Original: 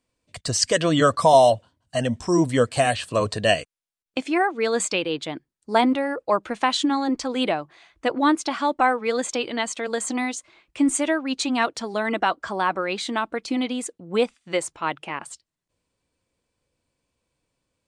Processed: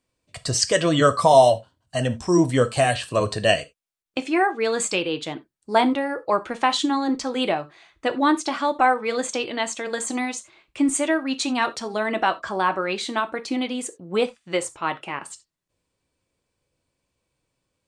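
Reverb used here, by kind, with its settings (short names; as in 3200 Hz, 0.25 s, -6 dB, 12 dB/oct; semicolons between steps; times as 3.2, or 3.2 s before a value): non-linear reverb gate 0.11 s falling, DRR 9 dB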